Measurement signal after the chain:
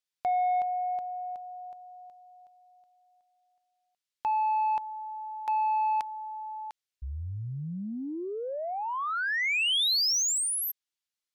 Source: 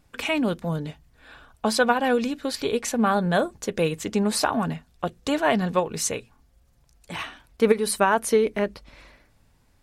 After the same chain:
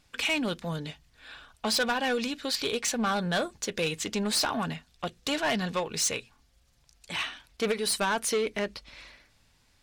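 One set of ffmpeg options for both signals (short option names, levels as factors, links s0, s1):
-af "equalizer=f=4100:t=o:w=2.8:g=12,asoftclip=type=tanh:threshold=0.168,volume=0.501"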